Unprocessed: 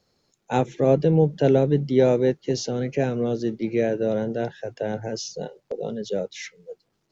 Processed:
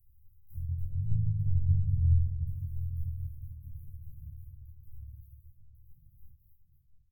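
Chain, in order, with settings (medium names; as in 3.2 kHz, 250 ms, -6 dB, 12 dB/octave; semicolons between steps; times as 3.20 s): block-companded coder 3-bit; Doppler pass-by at 1.61 s, 6 m/s, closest 3.5 m; low-pass that closes with the level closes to 2.1 kHz, closed at -15.5 dBFS; graphic EQ 125/500/1000 Hz +5/+8/+7 dB; upward compressor, threshold -38 dBFS; echo from a far wall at 120 m, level -10 dB; reverberation RT60 0.65 s, pre-delay 5 ms, DRR -3.5 dB; harmony voices -7 st -4 dB; inverse Chebyshev band-stop 310–5800 Hz, stop band 70 dB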